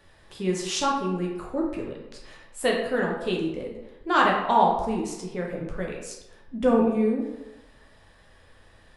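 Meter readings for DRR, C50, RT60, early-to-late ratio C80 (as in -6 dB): -2.0 dB, 3.5 dB, 0.95 s, 6.0 dB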